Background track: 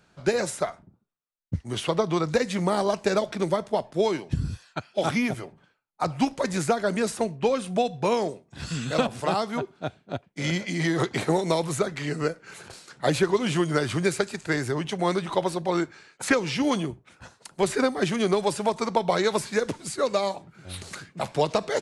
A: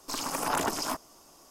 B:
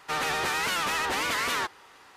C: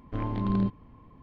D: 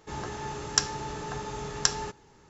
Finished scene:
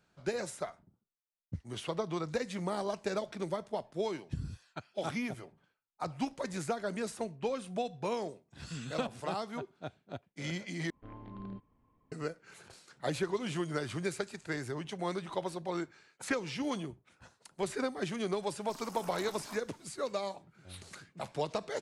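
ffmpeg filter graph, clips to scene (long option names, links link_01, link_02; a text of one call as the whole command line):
ffmpeg -i bed.wav -i cue0.wav -i cue1.wav -i cue2.wav -filter_complex "[0:a]volume=-11dB[link_01];[3:a]bass=frequency=250:gain=-4,treble=frequency=4000:gain=-7[link_02];[link_01]asplit=2[link_03][link_04];[link_03]atrim=end=10.904[link_05];[link_02]atrim=end=1.22,asetpts=PTS-STARTPTS,volume=-15.5dB[link_06];[link_04]atrim=start=12.116[link_07];[1:a]atrim=end=1.5,asetpts=PTS-STARTPTS,volume=-16.5dB,afade=type=in:duration=0.004:curve=hsin,afade=type=out:start_time=1.496:duration=0.004:curve=hsin,adelay=18610[link_08];[link_05][link_06]acrossfade=duration=0.004:curve1=hsin:curve2=hsin[link_09];[link_09][link_07]acrossfade=duration=0.004:curve1=hsin:curve2=hsin[link_10];[link_10][link_08]amix=inputs=2:normalize=0" out.wav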